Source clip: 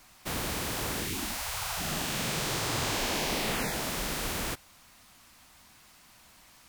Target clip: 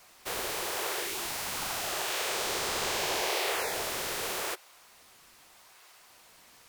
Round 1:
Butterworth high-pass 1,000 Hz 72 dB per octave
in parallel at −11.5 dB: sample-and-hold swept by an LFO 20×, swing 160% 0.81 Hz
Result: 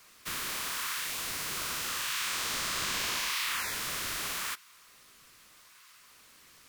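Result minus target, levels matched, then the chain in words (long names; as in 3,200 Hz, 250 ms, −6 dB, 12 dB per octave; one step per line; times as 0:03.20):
250 Hz band −4.0 dB
Butterworth high-pass 350 Hz 72 dB per octave
in parallel at −11.5 dB: sample-and-hold swept by an LFO 20×, swing 160% 0.81 Hz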